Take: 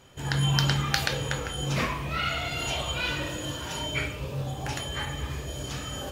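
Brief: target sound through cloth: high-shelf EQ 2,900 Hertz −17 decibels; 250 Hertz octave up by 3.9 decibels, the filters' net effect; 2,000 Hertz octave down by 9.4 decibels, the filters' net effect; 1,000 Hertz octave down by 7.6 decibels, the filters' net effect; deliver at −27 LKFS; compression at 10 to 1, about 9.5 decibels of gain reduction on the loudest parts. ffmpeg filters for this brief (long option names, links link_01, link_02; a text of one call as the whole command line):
ffmpeg -i in.wav -af "equalizer=frequency=250:width_type=o:gain=7,equalizer=frequency=1000:width_type=o:gain=-7,equalizer=frequency=2000:width_type=o:gain=-3,acompressor=threshold=-29dB:ratio=10,highshelf=frequency=2900:gain=-17,volume=8.5dB" out.wav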